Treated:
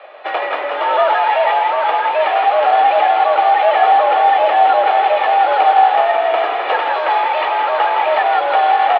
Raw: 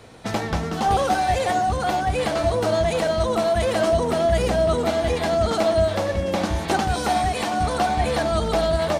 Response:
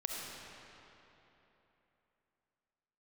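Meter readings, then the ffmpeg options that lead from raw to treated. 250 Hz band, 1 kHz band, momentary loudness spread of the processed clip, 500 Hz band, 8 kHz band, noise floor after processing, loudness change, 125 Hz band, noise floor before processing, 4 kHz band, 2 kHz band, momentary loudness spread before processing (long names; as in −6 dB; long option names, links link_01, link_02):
below −10 dB, +12.5 dB, 5 LU, +4.0 dB, below −25 dB, −22 dBFS, +8.0 dB, below −40 dB, −28 dBFS, +3.5 dB, +9.5 dB, 4 LU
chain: -filter_complex "[0:a]aecho=1:1:1.8:0.51,asplit=2[link_01][link_02];[link_02]aeval=exprs='(mod(10.6*val(0)+1,2)-1)/10.6':channel_layout=same,volume=-9dB[link_03];[link_01][link_03]amix=inputs=2:normalize=0,asplit=6[link_04][link_05][link_06][link_07][link_08][link_09];[link_05]adelay=163,afreqshift=48,volume=-6dB[link_10];[link_06]adelay=326,afreqshift=96,volume=-13.7dB[link_11];[link_07]adelay=489,afreqshift=144,volume=-21.5dB[link_12];[link_08]adelay=652,afreqshift=192,volume=-29.2dB[link_13];[link_09]adelay=815,afreqshift=240,volume=-37dB[link_14];[link_04][link_10][link_11][link_12][link_13][link_14]amix=inputs=6:normalize=0,highpass=frequency=330:width_type=q:width=0.5412,highpass=frequency=330:width_type=q:width=1.307,lowpass=frequency=3000:width_type=q:width=0.5176,lowpass=frequency=3000:width_type=q:width=0.7071,lowpass=frequency=3000:width_type=q:width=1.932,afreqshift=120,volume=6dB"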